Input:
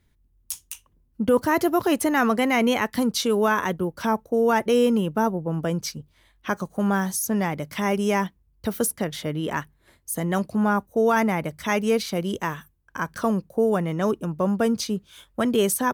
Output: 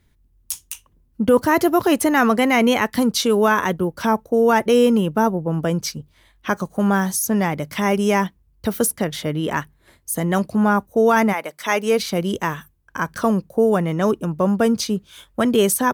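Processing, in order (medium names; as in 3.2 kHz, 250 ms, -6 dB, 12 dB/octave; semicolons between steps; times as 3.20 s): 11.32–11.98 s: high-pass 660 Hz -> 240 Hz 12 dB/octave; trim +4.5 dB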